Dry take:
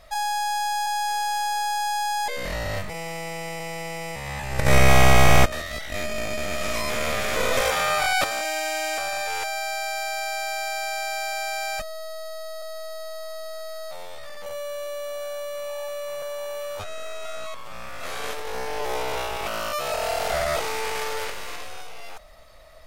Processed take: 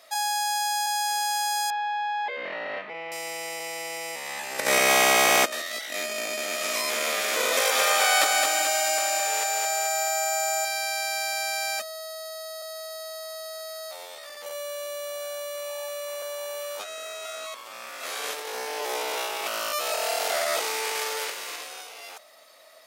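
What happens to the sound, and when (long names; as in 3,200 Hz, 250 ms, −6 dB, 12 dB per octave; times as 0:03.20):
0:01.70–0:03.12: low-pass filter 2,800 Hz 24 dB per octave
0:07.53–0:10.65: feedback echo at a low word length 216 ms, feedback 55%, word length 8 bits, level −3 dB
whole clip: high-pass filter 270 Hz 24 dB per octave; high-shelf EQ 2,800 Hz +8.5 dB; level −3 dB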